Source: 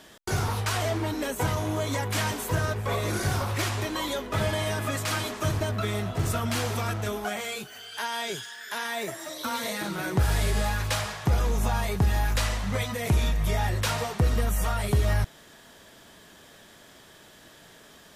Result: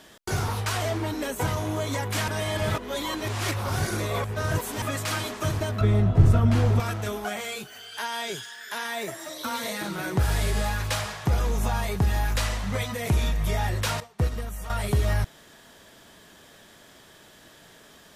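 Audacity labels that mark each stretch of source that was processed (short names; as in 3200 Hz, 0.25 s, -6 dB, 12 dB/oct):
2.280000	4.820000	reverse
5.810000	6.800000	tilt -3.5 dB/oct
14.000000	14.700000	upward expander 2.5:1, over -33 dBFS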